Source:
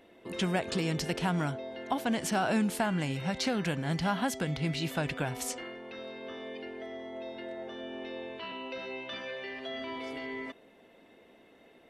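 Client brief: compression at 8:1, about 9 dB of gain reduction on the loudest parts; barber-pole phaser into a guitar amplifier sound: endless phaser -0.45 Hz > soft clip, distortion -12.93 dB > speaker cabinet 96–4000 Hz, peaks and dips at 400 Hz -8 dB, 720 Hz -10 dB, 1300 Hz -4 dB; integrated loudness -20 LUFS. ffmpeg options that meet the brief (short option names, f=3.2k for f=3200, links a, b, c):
-filter_complex "[0:a]acompressor=threshold=-34dB:ratio=8,asplit=2[a][b];[b]afreqshift=-0.45[c];[a][c]amix=inputs=2:normalize=1,asoftclip=threshold=-38.5dB,highpass=96,equalizer=f=400:t=q:w=4:g=-8,equalizer=f=720:t=q:w=4:g=-10,equalizer=f=1.3k:t=q:w=4:g=-4,lowpass=f=4k:w=0.5412,lowpass=f=4k:w=1.3066,volume=27dB"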